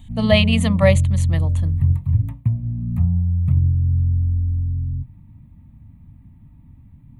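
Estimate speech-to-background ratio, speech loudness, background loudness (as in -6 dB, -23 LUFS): 1.0 dB, -19.5 LUFS, -20.5 LUFS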